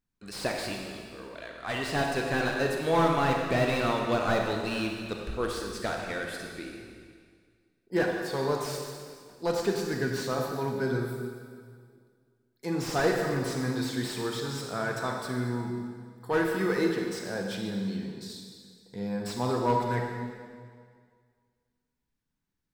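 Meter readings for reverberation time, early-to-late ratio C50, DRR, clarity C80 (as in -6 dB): 1.9 s, 2.0 dB, 1.0 dB, 3.5 dB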